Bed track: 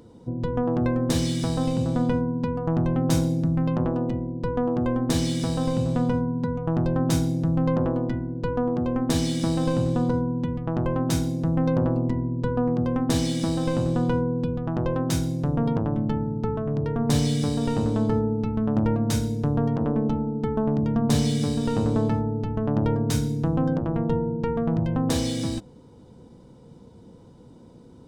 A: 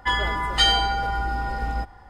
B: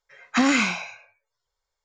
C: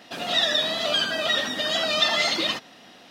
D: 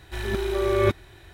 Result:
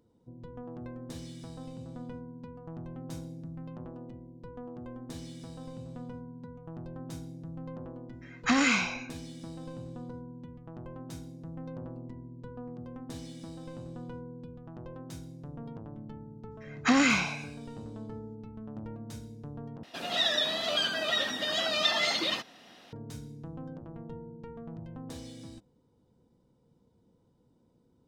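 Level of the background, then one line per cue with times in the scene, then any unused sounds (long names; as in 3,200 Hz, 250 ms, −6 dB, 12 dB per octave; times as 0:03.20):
bed track −19 dB
0:08.12: mix in B −3.5 dB + parametric band 420 Hz −4 dB 1.6 octaves
0:16.51: mix in B −3.5 dB
0:19.83: overwrite with C −5.5 dB
not used: A, D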